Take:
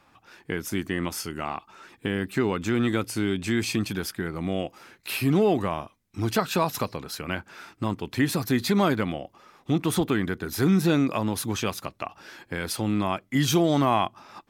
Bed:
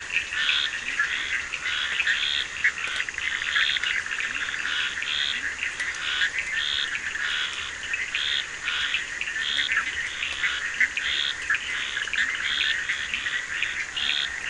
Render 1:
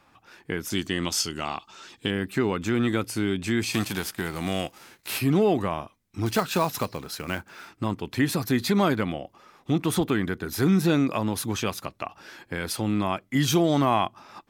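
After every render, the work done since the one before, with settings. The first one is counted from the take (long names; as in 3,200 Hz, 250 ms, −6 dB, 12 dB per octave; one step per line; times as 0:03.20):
0:00.70–0:02.11: flat-topped bell 4,800 Hz +10 dB
0:03.72–0:05.18: spectral envelope flattened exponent 0.6
0:06.26–0:07.68: floating-point word with a short mantissa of 2 bits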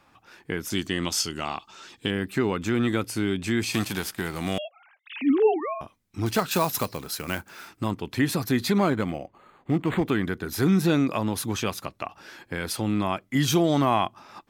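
0:04.58–0:05.81: three sine waves on the formant tracks
0:06.51–0:07.91: high-shelf EQ 7,300 Hz +8.5 dB
0:08.78–0:10.06: linearly interpolated sample-rate reduction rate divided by 8×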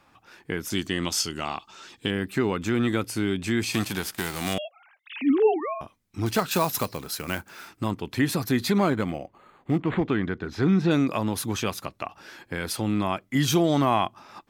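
0:04.12–0:04.53: spectral envelope flattened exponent 0.6
0:09.80–0:10.91: high-frequency loss of the air 160 metres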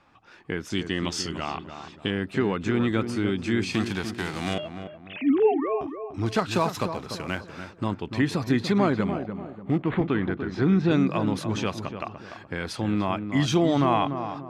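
high-frequency loss of the air 87 metres
feedback echo with a low-pass in the loop 293 ms, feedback 40%, low-pass 1,300 Hz, level −8 dB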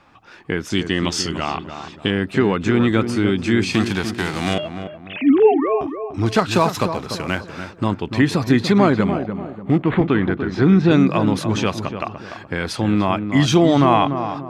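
level +7.5 dB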